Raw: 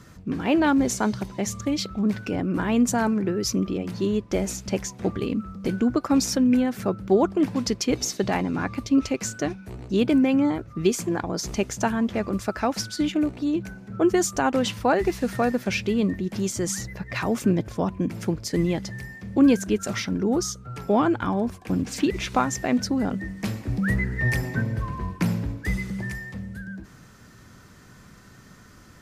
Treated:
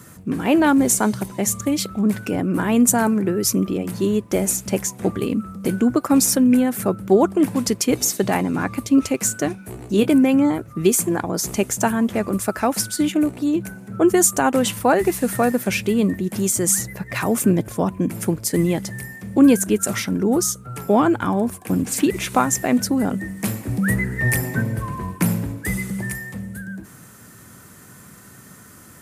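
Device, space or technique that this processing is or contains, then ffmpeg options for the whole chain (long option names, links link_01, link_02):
budget condenser microphone: -filter_complex "[0:a]asettb=1/sr,asplit=3[link_01][link_02][link_03];[link_01]atrim=end=9.524[link_04];[link_02]atrim=start=9.52:end=10.08,asetpts=PTS-STARTPTS,afade=type=in:duration=0.004:curve=qsin,afade=type=out:start_time=0.556:duration=0.004:curve=qsin,asplit=2[link_05][link_06];[link_06]adelay=19,volume=-9dB[link_07];[link_05][link_07]amix=inputs=2:normalize=0,atrim=end_sample=24696[link_08];[link_03]atrim=start=10.076[link_09];[link_04][link_08]acrossfade=duration=0.004:curve1=hsin:curve2=qsin[link_10];[link_10][link_09]acrossfade=duration=0.004:curve1=qsin:curve2=hsin,highpass=94,highshelf=frequency=7100:width_type=q:width=1.5:gain=11.5,volume=4.5dB"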